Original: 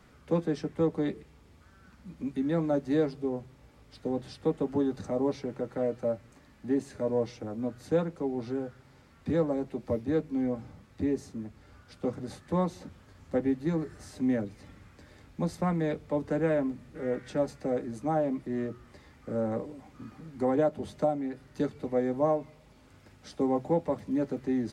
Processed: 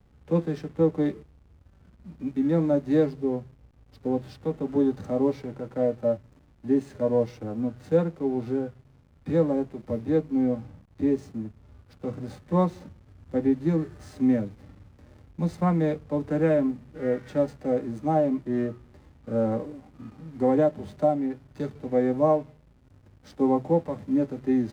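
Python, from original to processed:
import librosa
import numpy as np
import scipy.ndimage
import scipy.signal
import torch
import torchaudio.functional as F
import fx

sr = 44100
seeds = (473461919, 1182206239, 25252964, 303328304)

y = fx.backlash(x, sr, play_db=-48.5)
y = fx.hpss(y, sr, part='percussive', gain_db=-9)
y = F.gain(torch.from_numpy(y), 6.0).numpy()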